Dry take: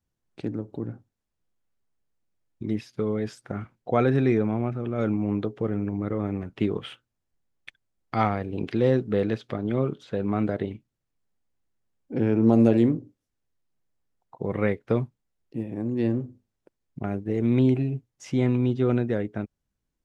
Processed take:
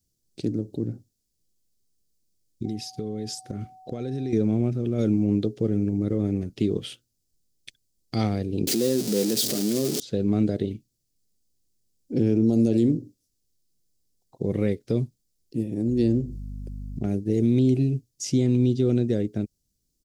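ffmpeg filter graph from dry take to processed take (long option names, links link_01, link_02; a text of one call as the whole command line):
ffmpeg -i in.wav -filter_complex "[0:a]asettb=1/sr,asplit=3[link_01][link_02][link_03];[link_01]atrim=end=2.654[link_04];[link_02]atrim=start=2.65:end=4.33,asetpts=PTS-STARTPTS,afade=type=in:duration=0.004:curve=qsin,afade=type=out:start_time=1.676:duration=0.004:curve=qsin,acompressor=threshold=-30dB:ratio=5:attack=3.2:release=140:knee=1:detection=peak,aeval=exprs='val(0)+0.01*sin(2*PI*750*n/s)':channel_layout=same[link_05];[link_03]atrim=start=4.326[link_06];[link_04][link_05]acrossfade=duration=0.004:curve1=hsin:curve2=qsin[link_07];[link_07][link_06]acrossfade=duration=0.004:curve1=qsin:curve2=hsin,asettb=1/sr,asplit=3[link_08][link_09][link_10];[link_08]atrim=end=8.674[link_11];[link_09]atrim=start=8.67:end=10,asetpts=PTS-STARTPTS,afade=type=in:duration=0.004:curve=qsin,afade=type=out:start_time=1.326:duration=0.004:curve=qsin,aeval=exprs='val(0)+0.5*0.0596*sgn(val(0))':channel_layout=same,highpass=frequency=170:width=0.5412,highpass=frequency=170:width=1.3066[link_12];[link_10]atrim=start=9.996[link_13];[link_11][link_12]acrossfade=duration=0.004:curve1=hsin:curve2=qsin[link_14];[link_14][link_13]acrossfade=duration=0.004:curve1=qsin:curve2=hsin,asettb=1/sr,asplit=3[link_15][link_16][link_17];[link_15]atrim=end=15.884[link_18];[link_16]atrim=start=15.88:end=17.07,asetpts=PTS-STARTPTS,afade=type=in:duration=0.004:curve=qsin,afade=type=out:start_time=1.186:duration=0.004:curve=qsin,aeval=exprs='val(0)+0.00708*(sin(2*PI*50*n/s)+sin(2*PI*2*50*n/s)/2+sin(2*PI*3*50*n/s)/3+sin(2*PI*4*50*n/s)/4+sin(2*PI*5*50*n/s)/5)':channel_layout=same,acompressor=mode=upward:threshold=-31dB:ratio=2.5:attack=3.2:release=140:knee=2.83:detection=peak[link_19];[link_17]atrim=start=17.066[link_20];[link_18][link_19]acrossfade=duration=0.004:curve1=hsin:curve2=qsin[link_21];[link_21][link_20]acrossfade=duration=0.004:curve1=qsin:curve2=hsin,firequalizer=gain_entry='entry(360,0);entry(980,-18);entry(4700,10)':delay=0.05:min_phase=1,alimiter=limit=-16.5dB:level=0:latency=1:release=106,volume=4dB" out.wav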